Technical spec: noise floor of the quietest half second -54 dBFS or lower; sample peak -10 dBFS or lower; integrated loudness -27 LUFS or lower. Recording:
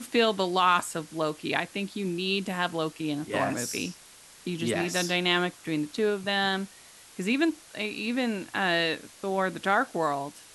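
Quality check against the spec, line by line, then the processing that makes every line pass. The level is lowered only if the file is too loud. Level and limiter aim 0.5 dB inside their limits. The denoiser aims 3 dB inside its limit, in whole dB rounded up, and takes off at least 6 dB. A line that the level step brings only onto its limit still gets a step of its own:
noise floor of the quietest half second -52 dBFS: fail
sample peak -9.0 dBFS: fail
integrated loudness -28.0 LUFS: OK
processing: denoiser 6 dB, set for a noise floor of -52 dBFS; limiter -10.5 dBFS

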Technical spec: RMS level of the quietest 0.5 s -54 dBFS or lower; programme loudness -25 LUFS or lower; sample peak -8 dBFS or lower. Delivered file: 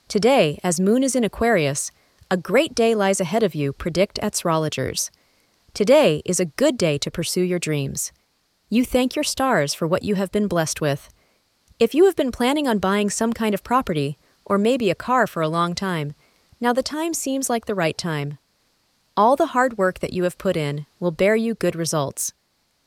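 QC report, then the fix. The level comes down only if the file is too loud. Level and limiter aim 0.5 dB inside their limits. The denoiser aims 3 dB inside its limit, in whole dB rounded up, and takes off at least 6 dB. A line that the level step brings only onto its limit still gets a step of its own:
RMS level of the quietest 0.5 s -67 dBFS: OK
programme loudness -21.0 LUFS: fail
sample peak -3.5 dBFS: fail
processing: gain -4.5 dB; limiter -8.5 dBFS

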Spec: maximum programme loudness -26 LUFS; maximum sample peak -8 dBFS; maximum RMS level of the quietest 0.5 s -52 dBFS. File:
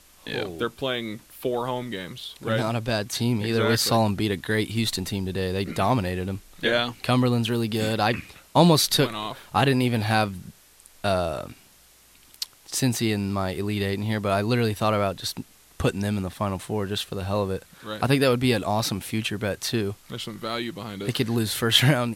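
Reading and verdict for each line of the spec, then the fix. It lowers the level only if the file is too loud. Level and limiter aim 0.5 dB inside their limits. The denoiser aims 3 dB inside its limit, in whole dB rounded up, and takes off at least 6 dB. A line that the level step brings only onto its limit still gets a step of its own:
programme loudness -25.0 LUFS: fail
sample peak -2.5 dBFS: fail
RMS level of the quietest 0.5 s -55 dBFS: OK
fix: gain -1.5 dB; limiter -8.5 dBFS

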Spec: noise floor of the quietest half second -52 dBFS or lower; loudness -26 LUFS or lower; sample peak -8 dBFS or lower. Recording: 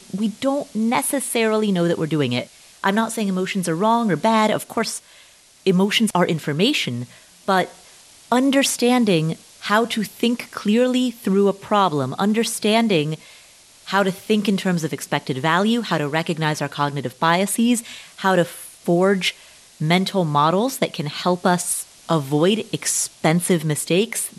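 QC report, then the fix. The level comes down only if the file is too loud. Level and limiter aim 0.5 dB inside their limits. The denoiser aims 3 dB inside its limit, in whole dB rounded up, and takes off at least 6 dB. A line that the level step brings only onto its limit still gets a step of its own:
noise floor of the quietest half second -50 dBFS: fail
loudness -20.0 LUFS: fail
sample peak -5.0 dBFS: fail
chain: gain -6.5 dB

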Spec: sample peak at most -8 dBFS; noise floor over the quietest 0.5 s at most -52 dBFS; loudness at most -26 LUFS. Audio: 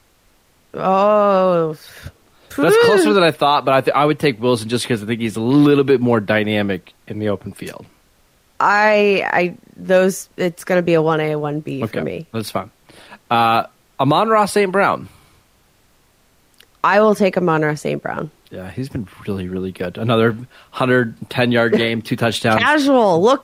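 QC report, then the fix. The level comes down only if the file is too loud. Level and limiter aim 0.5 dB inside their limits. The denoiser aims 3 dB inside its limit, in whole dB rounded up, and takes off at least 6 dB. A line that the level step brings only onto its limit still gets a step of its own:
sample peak -3.5 dBFS: fail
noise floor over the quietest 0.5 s -56 dBFS: OK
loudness -16.5 LUFS: fail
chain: gain -10 dB

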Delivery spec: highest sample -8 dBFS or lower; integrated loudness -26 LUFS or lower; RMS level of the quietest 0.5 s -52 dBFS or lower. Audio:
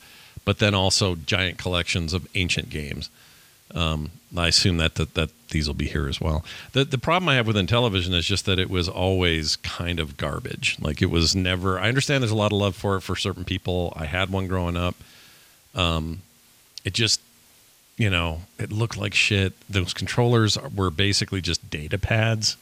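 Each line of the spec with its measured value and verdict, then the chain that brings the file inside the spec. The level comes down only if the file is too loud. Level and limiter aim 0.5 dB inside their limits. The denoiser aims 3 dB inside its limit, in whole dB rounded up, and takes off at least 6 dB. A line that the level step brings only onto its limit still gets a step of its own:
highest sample -5.5 dBFS: fail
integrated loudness -23.0 LUFS: fail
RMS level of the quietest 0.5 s -56 dBFS: OK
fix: gain -3.5 dB

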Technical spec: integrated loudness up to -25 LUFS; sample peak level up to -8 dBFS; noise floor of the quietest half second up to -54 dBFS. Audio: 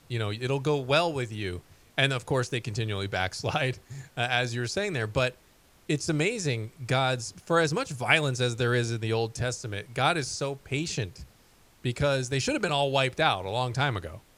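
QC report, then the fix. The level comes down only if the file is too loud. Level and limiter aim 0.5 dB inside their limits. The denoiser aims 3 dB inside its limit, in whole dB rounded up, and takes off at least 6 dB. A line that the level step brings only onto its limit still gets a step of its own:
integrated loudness -28.0 LUFS: OK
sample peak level -6.0 dBFS: fail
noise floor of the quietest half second -59 dBFS: OK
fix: limiter -8.5 dBFS

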